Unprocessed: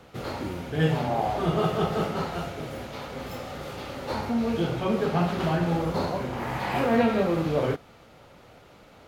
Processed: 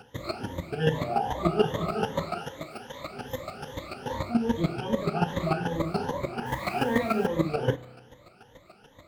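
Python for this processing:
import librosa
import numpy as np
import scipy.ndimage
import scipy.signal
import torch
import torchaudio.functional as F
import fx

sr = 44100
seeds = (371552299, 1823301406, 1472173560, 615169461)

y = fx.spec_ripple(x, sr, per_octave=1.1, drift_hz=2.5, depth_db=20)
y = fx.low_shelf(y, sr, hz=230.0, db=-9.5, at=(2.38, 3.0))
y = fx.dmg_noise_colour(y, sr, seeds[0], colour='white', level_db=-46.0, at=(6.45, 7.25), fade=0.02)
y = fx.chopper(y, sr, hz=6.9, depth_pct=65, duty_pct=15)
y = fx.rev_spring(y, sr, rt60_s=1.4, pass_ms=(32,), chirp_ms=50, drr_db=18.0)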